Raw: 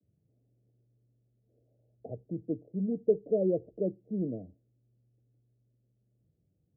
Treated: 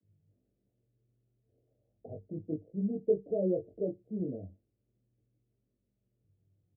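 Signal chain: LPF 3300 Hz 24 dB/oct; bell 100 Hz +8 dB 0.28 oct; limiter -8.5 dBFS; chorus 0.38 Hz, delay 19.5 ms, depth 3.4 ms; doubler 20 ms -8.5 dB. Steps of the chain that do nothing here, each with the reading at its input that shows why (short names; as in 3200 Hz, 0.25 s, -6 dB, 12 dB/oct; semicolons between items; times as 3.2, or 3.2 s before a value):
LPF 3300 Hz: input band ends at 720 Hz; limiter -8.5 dBFS: input peak -15.0 dBFS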